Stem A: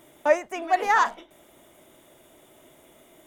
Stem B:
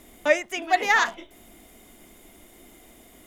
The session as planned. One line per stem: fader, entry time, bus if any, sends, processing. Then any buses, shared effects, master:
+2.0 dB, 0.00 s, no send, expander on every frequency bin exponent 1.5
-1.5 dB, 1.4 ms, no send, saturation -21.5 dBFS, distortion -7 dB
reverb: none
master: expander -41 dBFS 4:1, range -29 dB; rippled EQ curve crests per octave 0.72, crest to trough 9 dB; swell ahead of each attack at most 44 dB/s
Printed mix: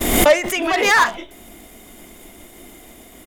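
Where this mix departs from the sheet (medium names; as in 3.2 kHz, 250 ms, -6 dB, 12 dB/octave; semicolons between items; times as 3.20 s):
stem B -1.5 dB -> +9.0 dB; master: missing rippled EQ curve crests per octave 0.72, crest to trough 9 dB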